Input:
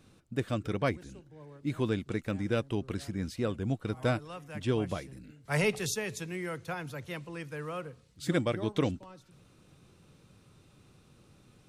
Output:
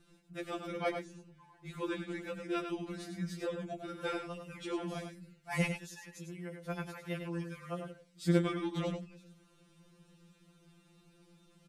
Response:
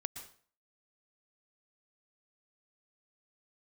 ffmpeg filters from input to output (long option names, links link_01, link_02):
-filter_complex "[0:a]asettb=1/sr,asplit=3[link_01][link_02][link_03];[link_01]atrim=end=5.664[link_04];[link_02]atrim=start=5.66:end=6.7,asetpts=PTS-STARTPTS,afade=type=in:duration=0.004:curve=qsin,afade=type=out:start_time=1.036:duration=0.004:curve=qsin,acompressor=threshold=-42dB:ratio=10[link_05];[link_03]atrim=start=6.696[link_06];[link_04][link_05]acrossfade=duration=0.004:curve1=hsin:curve2=qsin[link_07];[link_07][link_06]acrossfade=duration=0.004:curve1=qsin:curve2=hsin,aecho=1:1:100:0.447,afftfilt=real='re*2.83*eq(mod(b,8),0)':imag='im*2.83*eq(mod(b,8),0)':win_size=2048:overlap=0.75,volume=-2dB"